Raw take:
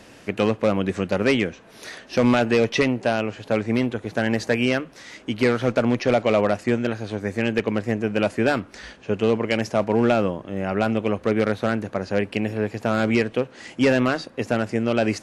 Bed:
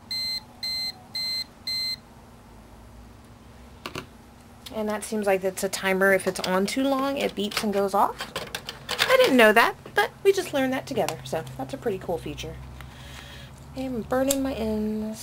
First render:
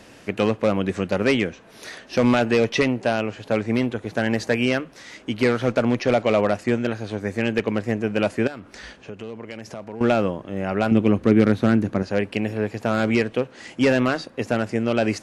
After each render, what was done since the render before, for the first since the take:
0:08.47–0:10.01: downward compressor 4 to 1, threshold −33 dBFS
0:10.91–0:12.03: low shelf with overshoot 410 Hz +6.5 dB, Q 1.5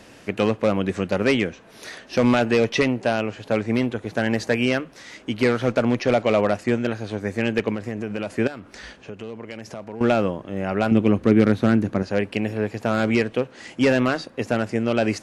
0:07.74–0:08.32: downward compressor, threshold −23 dBFS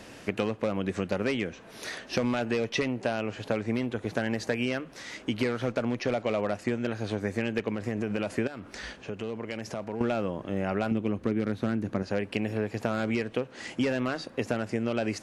downward compressor 6 to 1, threshold −25 dBFS, peak gain reduction 13.5 dB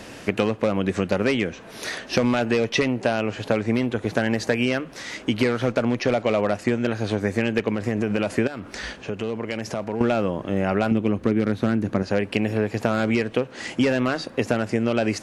level +7 dB

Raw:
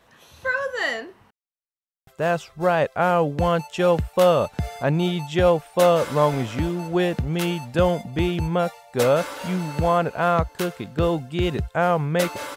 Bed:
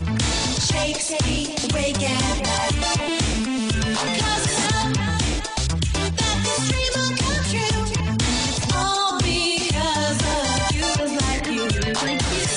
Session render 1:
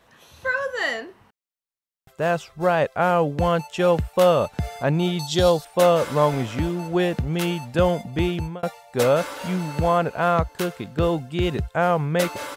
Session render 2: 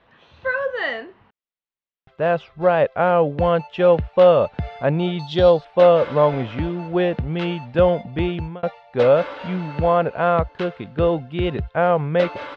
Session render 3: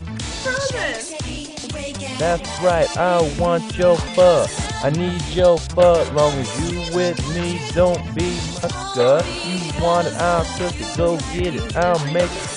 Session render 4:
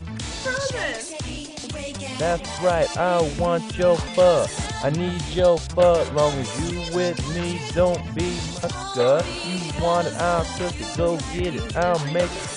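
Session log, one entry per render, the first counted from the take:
0:05.19–0:05.65: high shelf with overshoot 3,200 Hz +9 dB, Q 3; 0:08.21–0:08.63: fade out equal-power
low-pass filter 3,600 Hz 24 dB per octave; dynamic equaliser 540 Hz, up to +5 dB, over −31 dBFS, Q 2.1
mix in bed −6 dB
level −3.5 dB

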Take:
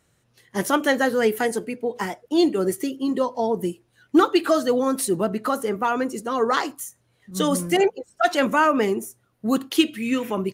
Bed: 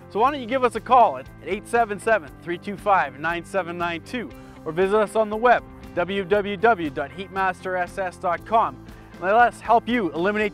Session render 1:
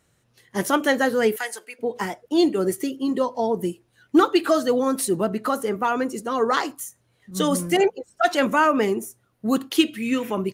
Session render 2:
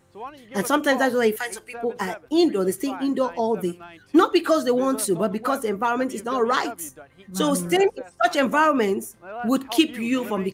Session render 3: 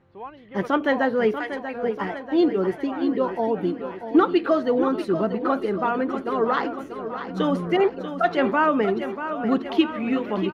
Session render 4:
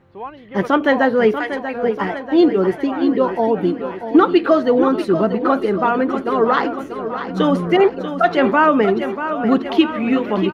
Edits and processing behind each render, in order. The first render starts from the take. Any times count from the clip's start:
0:01.36–0:01.79: high-pass filter 1,100 Hz
mix in bed −17 dB
high-frequency loss of the air 320 metres; repeating echo 638 ms, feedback 59%, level −10 dB
level +6.5 dB; brickwall limiter −3 dBFS, peak gain reduction 2 dB

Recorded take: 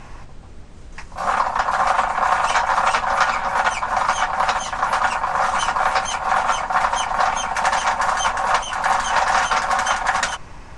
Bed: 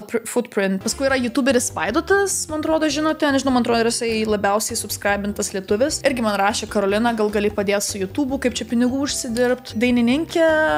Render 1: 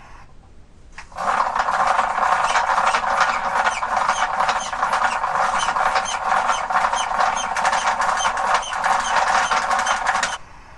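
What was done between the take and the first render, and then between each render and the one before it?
noise reduction from a noise print 6 dB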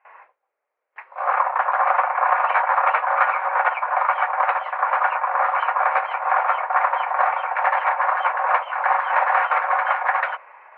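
noise gate with hold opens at −32 dBFS
elliptic band-pass filter 510–2,300 Hz, stop band 50 dB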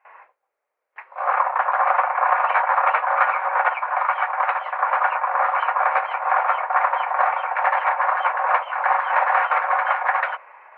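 0:03.75–0:04.64: low-shelf EQ 390 Hz −9.5 dB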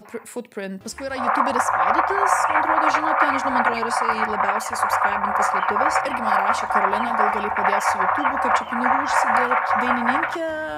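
mix in bed −10.5 dB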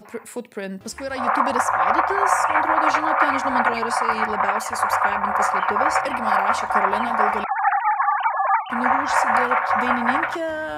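0:07.44–0:08.70: three sine waves on the formant tracks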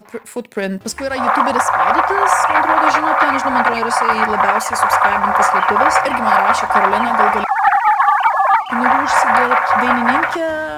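leveller curve on the samples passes 1
automatic gain control gain up to 7 dB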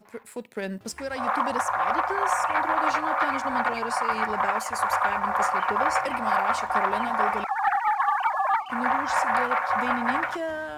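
level −11 dB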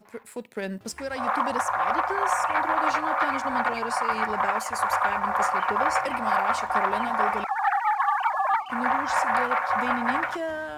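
0:07.61–0:08.28: Butterworth high-pass 640 Hz 48 dB per octave

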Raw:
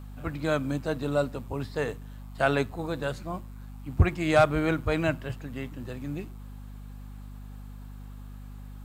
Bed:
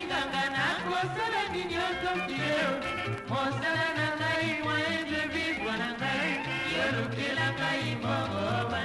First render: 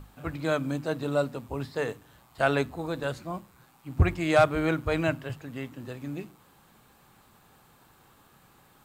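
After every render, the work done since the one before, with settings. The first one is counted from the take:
mains-hum notches 50/100/150/200/250/300 Hz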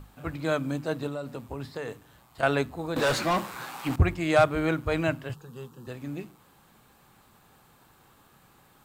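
0:01.07–0:02.43: downward compressor, threshold −30 dBFS
0:02.96–0:03.96: mid-hump overdrive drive 30 dB, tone 5,100 Hz, clips at −16.5 dBFS
0:05.34–0:05.87: phaser with its sweep stopped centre 420 Hz, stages 8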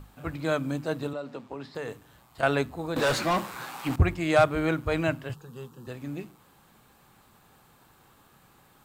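0:01.13–0:01.75: three-way crossover with the lows and the highs turned down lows −18 dB, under 170 Hz, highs −18 dB, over 6,400 Hz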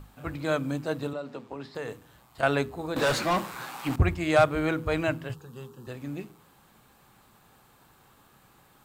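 hum removal 81.53 Hz, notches 6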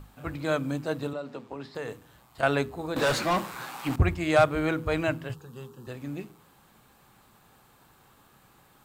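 no processing that can be heard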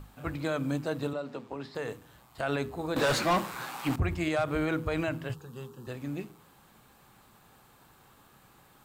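brickwall limiter −19.5 dBFS, peak gain reduction 10 dB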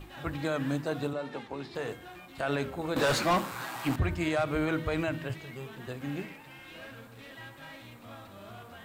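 mix in bed −17.5 dB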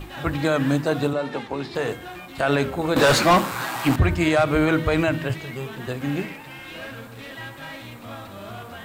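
level +10 dB

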